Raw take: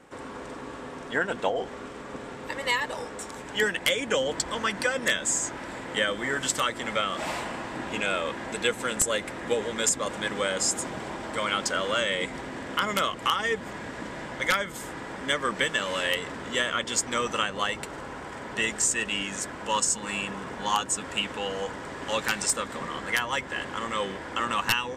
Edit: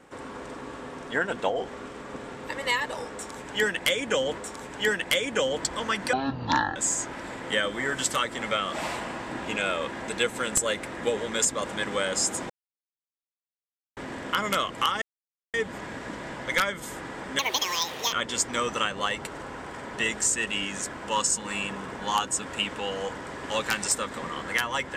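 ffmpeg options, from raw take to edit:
-filter_complex "[0:a]asplit=9[a][b][c][d][e][f][g][h][i];[a]atrim=end=4.382[j];[b]atrim=start=3.128:end=4.884[k];[c]atrim=start=4.88:end=5.2,asetpts=PTS-STARTPTS,asetrate=22491,aresample=44100[l];[d]atrim=start=5.196:end=10.94,asetpts=PTS-STARTPTS,afade=t=out:st=5.74:d=0.004:c=hsin[m];[e]atrim=start=10.94:end=12.41,asetpts=PTS-STARTPTS,volume=0[n];[f]atrim=start=12.41:end=13.46,asetpts=PTS-STARTPTS,afade=t=in:d=0.004:c=hsin,afade=t=out:st=1.046:d=0.004:c=hsin,apad=pad_dur=0.52[o];[g]atrim=start=13.46:end=15.314,asetpts=PTS-STARTPTS,afade=t=in:d=0.004:c=hsin[p];[h]atrim=start=15.31:end=16.71,asetpts=PTS-STARTPTS,asetrate=83349,aresample=44100[q];[i]atrim=start=16.706[r];[j][k]acrossfade=d=0.004:c1=hsin:c2=hsin[s];[s][l]acrossfade=d=0.004:c1=hsin:c2=hsin[t];[m][n][o][p]concat=n=4:v=0:a=1[u];[t][u]acrossfade=d=0.004:c1=hsin:c2=hsin[v];[v][q]acrossfade=d=0.004:c1=hsin:c2=hsin[w];[w][r]acrossfade=d=0.004:c1=hsin:c2=hsin"

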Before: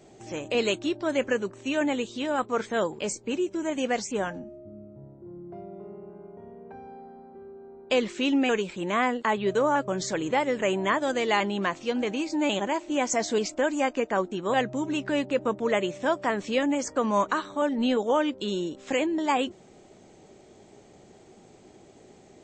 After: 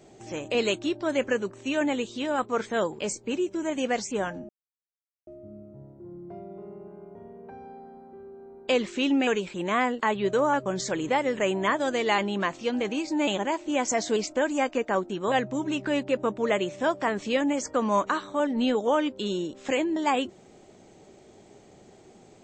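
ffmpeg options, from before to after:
-filter_complex "[0:a]asplit=2[a][b];[a]atrim=end=4.49,asetpts=PTS-STARTPTS,afade=t=out:st=4.486:d=0.004:c=hsin,apad=pad_dur=0.78[c];[b]atrim=start=4.49,asetpts=PTS-STARTPTS,afade=t=in:d=0.004:c=hsin[d];[c][d]concat=n=2:v=0:a=1"

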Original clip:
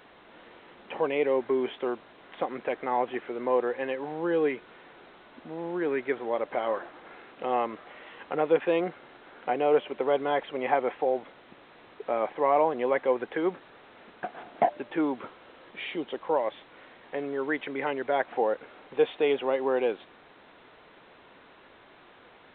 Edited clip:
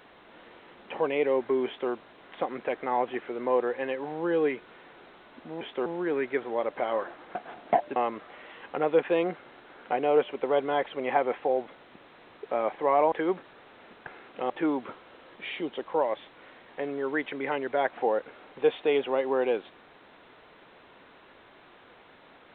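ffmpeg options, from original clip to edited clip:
-filter_complex "[0:a]asplit=8[a][b][c][d][e][f][g][h];[a]atrim=end=5.612[i];[b]atrim=start=1.658:end=1.912[j];[c]atrim=start=5.608:end=7.102[k];[d]atrim=start=14.238:end=14.852[l];[e]atrim=start=7.528:end=12.692[m];[f]atrim=start=13.288:end=14.242[n];[g]atrim=start=7.098:end=7.532[o];[h]atrim=start=14.848[p];[i][j]acrossfade=d=0.004:c1=hsin:c2=hsin[q];[q][k]acrossfade=d=0.004:c1=hsin:c2=hsin[r];[r][l]acrossfade=d=0.004:c1=hsin:c2=hsin[s];[s][m]acrossfade=d=0.004:c1=hsin:c2=hsin[t];[t][n]acrossfade=d=0.004:c1=hsin:c2=hsin[u];[u][o]acrossfade=d=0.004:c1=hsin:c2=hsin[v];[v][p]acrossfade=d=0.004:c1=hsin:c2=hsin"

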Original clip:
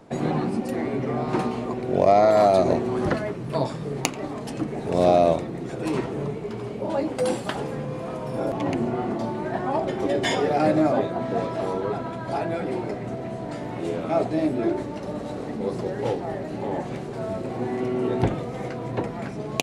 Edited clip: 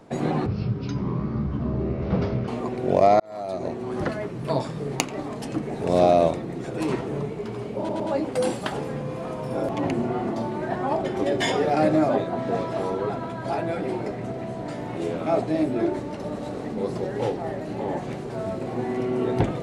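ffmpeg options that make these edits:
-filter_complex "[0:a]asplit=6[a][b][c][d][e][f];[a]atrim=end=0.464[g];[b]atrim=start=0.46:end=1.53,asetpts=PTS-STARTPTS,asetrate=23373,aresample=44100,atrim=end_sample=89032,asetpts=PTS-STARTPTS[h];[c]atrim=start=1.526:end=2.25,asetpts=PTS-STARTPTS,afade=t=out:st=0.72:d=0.004:c=hsin[i];[d]atrim=start=2.25:end=6.942,asetpts=PTS-STARTPTS,afade=t=in:d=1.22[j];[e]atrim=start=6.828:end=6.942[k];[f]atrim=start=6.828[l];[g][h]acrossfade=d=0.004:c1=hsin:c2=hsin[m];[i][j]concat=n=2:v=0:a=1[n];[m][n]acrossfade=d=0.004:c1=hsin:c2=hsin[o];[o][k]acrossfade=d=0.004:c1=hsin:c2=hsin[p];[p][l]acrossfade=d=0.004:c1=hsin:c2=hsin"

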